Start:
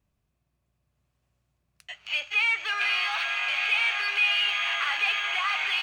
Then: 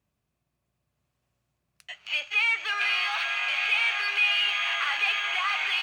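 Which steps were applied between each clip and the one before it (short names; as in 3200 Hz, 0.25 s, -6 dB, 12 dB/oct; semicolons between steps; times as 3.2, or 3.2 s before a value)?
HPF 120 Hz 6 dB/oct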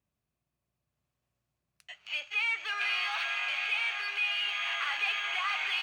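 vocal rider 0.5 s; gain -5.5 dB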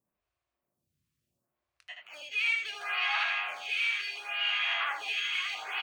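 on a send: early reflections 23 ms -12.5 dB, 78 ms -3.5 dB; on the sum: photocell phaser 0.71 Hz; gain +2.5 dB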